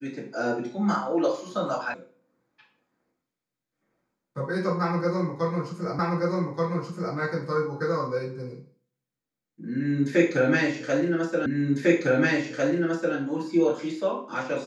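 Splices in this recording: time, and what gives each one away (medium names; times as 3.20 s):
1.94 s: sound stops dead
5.99 s: repeat of the last 1.18 s
11.46 s: repeat of the last 1.7 s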